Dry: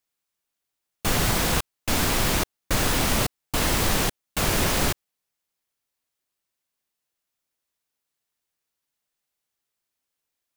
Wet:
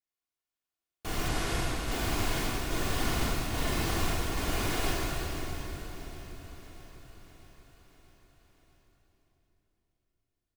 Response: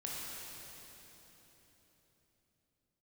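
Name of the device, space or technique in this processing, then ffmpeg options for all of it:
swimming-pool hall: -filter_complex "[1:a]atrim=start_sample=2205[link_01];[0:a][link_01]afir=irnorm=-1:irlink=0,highshelf=frequency=5000:gain=-5.5,asplit=3[link_02][link_03][link_04];[link_02]afade=type=out:start_time=1.28:duration=0.02[link_05];[link_03]lowpass=frequency=12000:width=0.5412,lowpass=frequency=12000:width=1.3066,afade=type=in:start_time=1.28:duration=0.02,afade=type=out:start_time=1.9:duration=0.02[link_06];[link_04]afade=type=in:start_time=1.9:duration=0.02[link_07];[link_05][link_06][link_07]amix=inputs=3:normalize=0,aecho=1:1:2.8:0.37,aecho=1:1:640|1280|1920|2560|3200|3840:0.158|0.0951|0.0571|0.0342|0.0205|0.0123,volume=-8.5dB"

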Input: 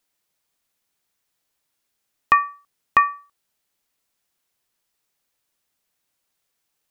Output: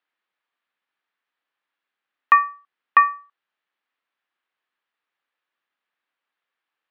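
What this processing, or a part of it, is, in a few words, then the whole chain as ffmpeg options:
phone earpiece: -af "highpass=350,equalizer=frequency=420:width_type=q:width=4:gain=-4,equalizer=frequency=620:width_type=q:width=4:gain=-4,equalizer=frequency=1200:width_type=q:width=4:gain=4,equalizer=frequency=1700:width_type=q:width=4:gain=5,lowpass=frequency=3300:width=0.5412,lowpass=frequency=3300:width=1.3066,volume=-2dB"

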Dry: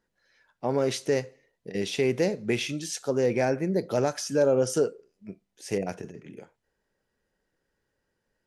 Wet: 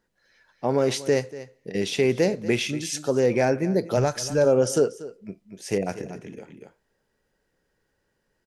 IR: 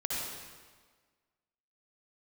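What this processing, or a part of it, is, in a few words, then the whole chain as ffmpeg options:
ducked delay: -filter_complex "[0:a]asplit=3[link_01][link_02][link_03];[link_01]afade=type=out:start_time=3.96:duration=0.02[link_04];[link_02]asubboost=boost=9:cutoff=84,afade=type=in:start_time=3.96:duration=0.02,afade=type=out:start_time=4.44:duration=0.02[link_05];[link_03]afade=type=in:start_time=4.44:duration=0.02[link_06];[link_04][link_05][link_06]amix=inputs=3:normalize=0,asplit=3[link_07][link_08][link_09];[link_08]adelay=238,volume=-4.5dB[link_10];[link_09]apad=whole_len=383683[link_11];[link_10][link_11]sidechaincompress=threshold=-37dB:ratio=6:attack=20:release=596[link_12];[link_07][link_12]amix=inputs=2:normalize=0,volume=3.5dB"

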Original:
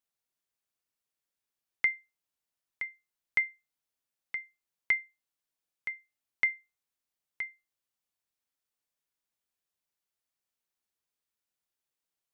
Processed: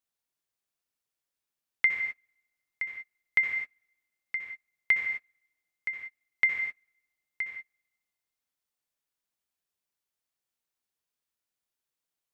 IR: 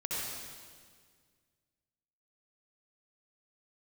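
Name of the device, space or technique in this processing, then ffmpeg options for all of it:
keyed gated reverb: -filter_complex "[0:a]asplit=3[link_01][link_02][link_03];[1:a]atrim=start_sample=2205[link_04];[link_02][link_04]afir=irnorm=-1:irlink=0[link_05];[link_03]apad=whole_len=543963[link_06];[link_05][link_06]sidechaingate=range=-33dB:threshold=-54dB:ratio=16:detection=peak,volume=-4dB[link_07];[link_01][link_07]amix=inputs=2:normalize=0"

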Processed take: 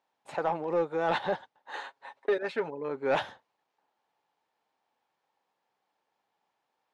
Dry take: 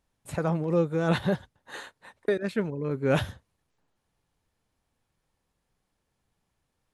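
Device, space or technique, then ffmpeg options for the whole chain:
intercom: -filter_complex "[0:a]asettb=1/sr,asplit=3[link_01][link_02][link_03];[link_01]atrim=end=1.844[link_04];[link_02]atrim=start=1.84:end=2.69,asetpts=PTS-STARTPTS,afade=type=in:duration=0.004:curve=qsin,afade=type=out:start_time=0.846:duration=0.004:curve=qsin,aecho=1:1:7.3:0.6,atrim=end_sample=37485[link_05];[link_03]atrim=start=2.686[link_06];[link_04][link_05]acrossfade=duration=0.004:curve1=hsin:curve2=qsin[link_07];[link_07][link_06]acrossfade=duration=0.004:curve1=qsin:curve2=hsin,highpass=410,lowpass=4400,equalizer=frequency=840:width_type=o:width=0.48:gain=9,asoftclip=type=tanh:threshold=-18.5dB"

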